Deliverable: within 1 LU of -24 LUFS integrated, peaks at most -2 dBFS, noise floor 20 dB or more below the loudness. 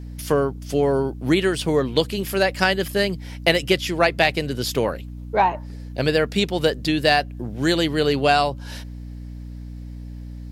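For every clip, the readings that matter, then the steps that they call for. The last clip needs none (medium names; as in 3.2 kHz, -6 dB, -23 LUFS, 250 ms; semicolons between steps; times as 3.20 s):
hum 60 Hz; highest harmonic 300 Hz; hum level -32 dBFS; loudness -21.0 LUFS; peak level -3.0 dBFS; loudness target -24.0 LUFS
-> hum notches 60/120/180/240/300 Hz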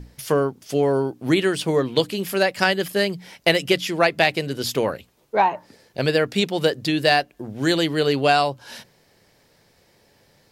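hum not found; loudness -21.0 LUFS; peak level -2.5 dBFS; loudness target -24.0 LUFS
-> trim -3 dB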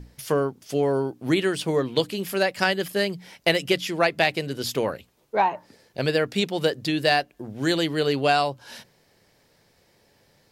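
loudness -24.0 LUFS; peak level -5.5 dBFS; noise floor -63 dBFS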